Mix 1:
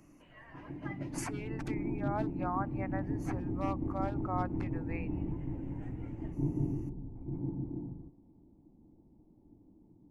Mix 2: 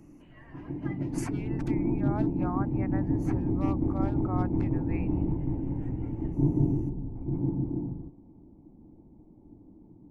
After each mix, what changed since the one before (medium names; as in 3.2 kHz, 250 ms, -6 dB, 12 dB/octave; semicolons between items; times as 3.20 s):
background +8.0 dB; reverb: off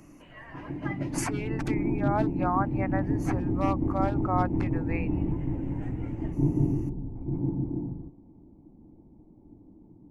speech +9.0 dB